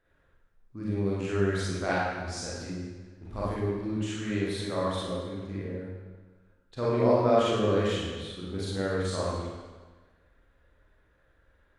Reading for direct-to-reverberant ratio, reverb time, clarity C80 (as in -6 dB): -8.0 dB, 1.4 s, 0.5 dB